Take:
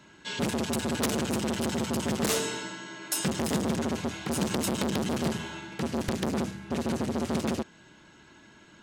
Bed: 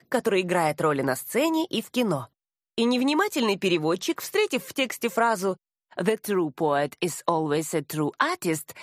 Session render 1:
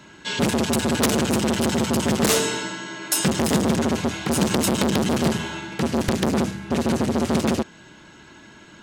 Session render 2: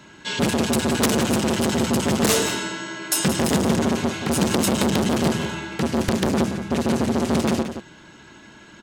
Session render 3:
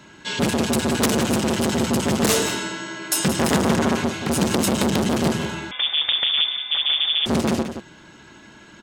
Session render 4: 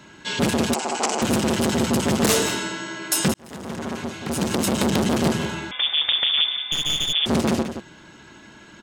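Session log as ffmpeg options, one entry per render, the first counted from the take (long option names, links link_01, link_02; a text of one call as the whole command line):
ffmpeg -i in.wav -af "volume=8dB" out.wav
ffmpeg -i in.wav -filter_complex "[0:a]asplit=2[link_01][link_02];[link_02]adelay=174.9,volume=-9dB,highshelf=frequency=4000:gain=-3.94[link_03];[link_01][link_03]amix=inputs=2:normalize=0" out.wav
ffmpeg -i in.wav -filter_complex "[0:a]asettb=1/sr,asplit=3[link_01][link_02][link_03];[link_01]atrim=end=3.404[link_04];[link_02]atrim=start=3.4:end=4.04,asetpts=PTS-STARTPTS,afade=type=in:duration=0.004:curve=qsin,afade=type=out:start_time=0.636:duration=0.004:curve=qsin,equalizer=frequency=1400:width=0.69:gain=5[link_05];[link_03]atrim=start=4.036[link_06];[link_04][link_05]acrossfade=duration=0.004:curve1=hsin:curve2=qsin[link_07];[link_07][link_06]acrossfade=duration=0.004:curve1=qsin:curve2=hsin,asettb=1/sr,asplit=3[link_08][link_09][link_10];[link_08]atrim=end=5.714[link_11];[link_09]atrim=start=5.71:end=7.26,asetpts=PTS-STARTPTS,afade=type=in:duration=0.004:curve=qsin,afade=type=out:start_time=1.546:duration=0.004:curve=qsin,lowpass=frequency=3100:width_type=q:width=0.5098,lowpass=frequency=3100:width_type=q:width=0.6013,lowpass=frequency=3100:width_type=q:width=0.9,lowpass=frequency=3100:width_type=q:width=2.563,afreqshift=-3700[link_12];[link_10]atrim=start=7.256[link_13];[link_11][link_12]acrossfade=duration=0.004:curve1=hsin:curve2=qsin[link_14];[link_14][link_13]acrossfade=duration=0.004:curve1=qsin:curve2=hsin" out.wav
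ffmpeg -i in.wav -filter_complex "[0:a]asettb=1/sr,asplit=3[link_01][link_02][link_03];[link_01]atrim=end=0.744[link_04];[link_02]atrim=start=0.74:end=1.22,asetpts=PTS-STARTPTS,afade=type=in:duration=0.004:curve=qsin,afade=type=out:start_time=0.476:duration=0.004:curve=qsin,highpass=490,equalizer=frequency=540:width_type=q:width=4:gain=-4,equalizer=frequency=780:width_type=q:width=4:gain=9,equalizer=frequency=1700:width_type=q:width=4:gain=-7,equalizer=frequency=3700:width_type=q:width=4:gain=-9,equalizer=frequency=7500:width_type=q:width=4:gain=5,lowpass=frequency=7600:width=0.5412,lowpass=frequency=7600:width=1.3066[link_05];[link_03]atrim=start=1.216[link_06];[link_04][link_05]acrossfade=duration=0.004:curve1=hsin:curve2=qsin[link_07];[link_07][link_06]acrossfade=duration=0.004:curve1=qsin:curve2=hsin,asettb=1/sr,asplit=3[link_08][link_09][link_10];[link_08]atrim=end=6.724[link_11];[link_09]atrim=start=6.72:end=7.13,asetpts=PTS-STARTPTS,afade=type=in:duration=0.004:curve=qsin,afade=type=out:start_time=0.406:duration=0.004:curve=qsin,aeval=exprs='clip(val(0),-1,0.0376)':channel_layout=same[link_12];[link_10]atrim=start=7.126[link_13];[link_11][link_12]acrossfade=duration=0.004:curve1=hsin:curve2=qsin[link_14];[link_14][link_13]acrossfade=duration=0.004:curve1=qsin:curve2=hsin,asplit=2[link_15][link_16];[link_15]atrim=end=3.34,asetpts=PTS-STARTPTS,afade=type=out:start_time=3.336:duration=0.004:curve=hsin[link_17];[link_16]atrim=start=3.34,asetpts=PTS-STARTPTS,afade=type=in:duration=1.62[link_18];[link_17][link_18]concat=n=2:v=0:a=1" out.wav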